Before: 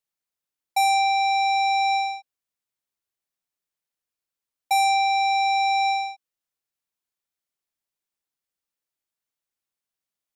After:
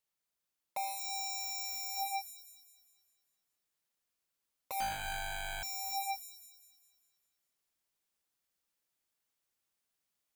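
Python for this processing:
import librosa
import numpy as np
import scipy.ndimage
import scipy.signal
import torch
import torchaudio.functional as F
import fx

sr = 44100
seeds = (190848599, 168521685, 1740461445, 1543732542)

y = fx.rider(x, sr, range_db=10, speed_s=0.5)
y = 10.0 ** (-33.5 / 20.0) * (np.abs((y / 10.0 ** (-33.5 / 20.0) + 3.0) % 4.0 - 2.0) - 1.0)
y = fx.echo_wet_highpass(y, sr, ms=201, feedback_pct=47, hz=5200.0, wet_db=-7)
y = fx.resample_bad(y, sr, factor=8, down='none', up='hold', at=(4.8, 5.63))
y = y * 10.0 ** (1.5 / 20.0)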